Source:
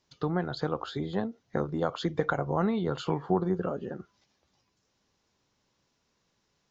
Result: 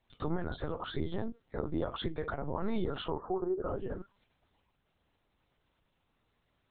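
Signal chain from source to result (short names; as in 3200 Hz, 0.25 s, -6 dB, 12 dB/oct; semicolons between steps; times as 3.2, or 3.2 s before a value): 3.08–3.68 Chebyshev band-pass 310–1300 Hz, order 3; limiter -24 dBFS, peak gain reduction 10.5 dB; LPC vocoder at 8 kHz pitch kept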